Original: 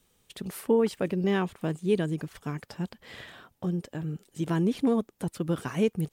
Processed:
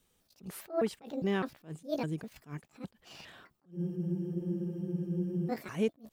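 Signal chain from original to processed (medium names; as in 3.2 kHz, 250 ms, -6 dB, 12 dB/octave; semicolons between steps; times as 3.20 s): pitch shift switched off and on +6.5 st, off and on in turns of 203 ms; spectral freeze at 3.76 s, 1.74 s; attacks held to a fixed rise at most 240 dB/s; trim -5 dB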